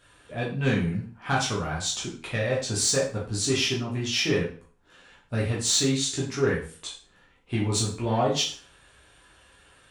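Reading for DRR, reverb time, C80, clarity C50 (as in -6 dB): -5.0 dB, 0.45 s, 10.5 dB, 6.0 dB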